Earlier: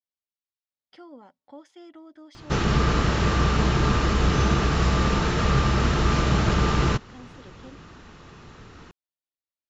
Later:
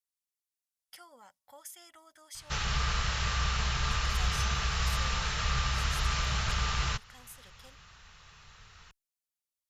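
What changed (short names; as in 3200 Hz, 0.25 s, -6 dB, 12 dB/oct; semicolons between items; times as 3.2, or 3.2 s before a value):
speech: remove ladder low-pass 5100 Hz, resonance 35%; master: add passive tone stack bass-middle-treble 10-0-10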